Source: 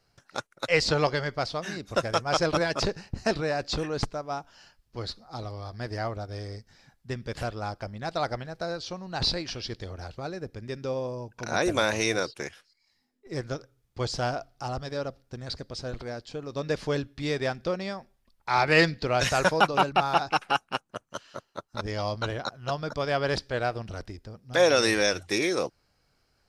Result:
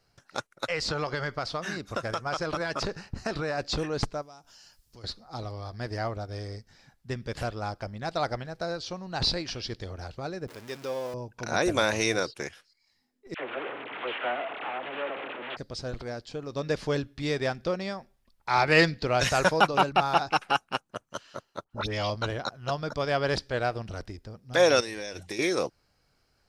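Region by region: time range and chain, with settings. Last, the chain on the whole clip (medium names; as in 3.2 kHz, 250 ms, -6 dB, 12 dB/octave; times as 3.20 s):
0.64–3.58 s: peaking EQ 1.3 kHz +5.5 dB 0.74 oct + compression, threshold -26 dBFS
4.22–5.04 s: tone controls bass +1 dB, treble +14 dB + compression 3:1, threshold -52 dBFS
10.48–11.14 s: jump at every zero crossing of -38 dBFS + high-pass 530 Hz 6 dB/octave
13.34–15.57 s: one-bit delta coder 16 kbps, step -25.5 dBFS + Bessel high-pass 430 Hz, order 4 + phase dispersion lows, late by 64 ms, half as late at 940 Hz
21.64–22.10 s: peaking EQ 3 kHz +9.5 dB 0.99 oct + phase dispersion highs, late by 69 ms, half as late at 1.8 kHz
24.80–25.39 s: peaking EQ 1.3 kHz -9 dB 0.29 oct + hum notches 60/120/180 Hz + compression 12:1, threshold -31 dBFS
whole clip: none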